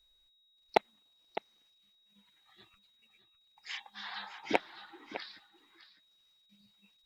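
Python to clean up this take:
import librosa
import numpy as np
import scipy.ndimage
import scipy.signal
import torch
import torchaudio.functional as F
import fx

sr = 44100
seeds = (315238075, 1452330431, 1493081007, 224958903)

y = fx.fix_declip(x, sr, threshold_db=-9.0)
y = fx.notch(y, sr, hz=3800.0, q=30.0)
y = fx.fix_echo_inverse(y, sr, delay_ms=607, level_db=-13.0)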